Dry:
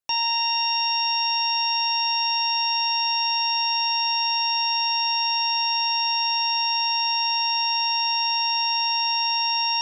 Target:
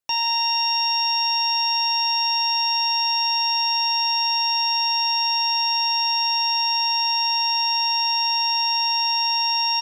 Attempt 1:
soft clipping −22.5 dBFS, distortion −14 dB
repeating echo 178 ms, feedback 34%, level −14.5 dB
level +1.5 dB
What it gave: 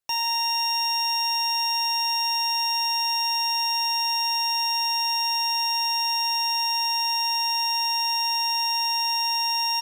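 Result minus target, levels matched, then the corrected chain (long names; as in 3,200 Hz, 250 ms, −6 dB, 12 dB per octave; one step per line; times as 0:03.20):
soft clipping: distortion +16 dB
soft clipping −12.5 dBFS, distortion −30 dB
repeating echo 178 ms, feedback 34%, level −14.5 dB
level +1.5 dB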